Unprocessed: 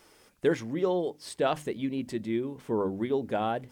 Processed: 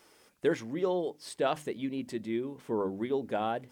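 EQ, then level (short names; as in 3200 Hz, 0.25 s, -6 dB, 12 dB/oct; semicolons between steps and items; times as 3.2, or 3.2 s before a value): low shelf 86 Hz -11.5 dB; -2.0 dB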